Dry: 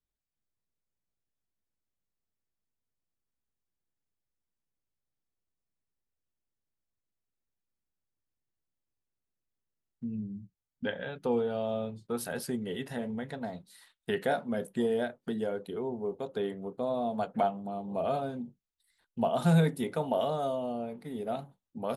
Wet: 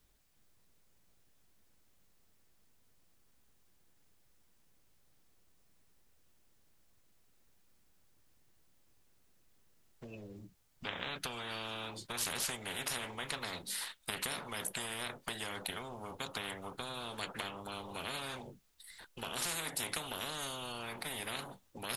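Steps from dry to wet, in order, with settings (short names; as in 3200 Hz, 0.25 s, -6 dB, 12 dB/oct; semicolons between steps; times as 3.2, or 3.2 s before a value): compressor 2.5:1, threshold -32 dBFS, peak gain reduction 8.5 dB; spectral compressor 10:1; gain +1 dB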